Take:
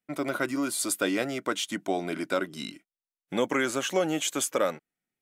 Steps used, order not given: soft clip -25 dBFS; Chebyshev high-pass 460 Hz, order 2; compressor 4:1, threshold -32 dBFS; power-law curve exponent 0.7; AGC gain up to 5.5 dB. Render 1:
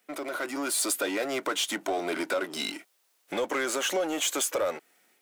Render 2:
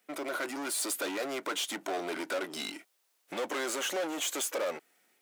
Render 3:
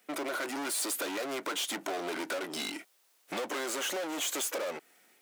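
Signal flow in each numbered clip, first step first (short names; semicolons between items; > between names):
compressor > power-law curve > Chebyshev high-pass > soft clip > AGC; AGC > soft clip > compressor > power-law curve > Chebyshev high-pass; AGC > power-law curve > soft clip > Chebyshev high-pass > compressor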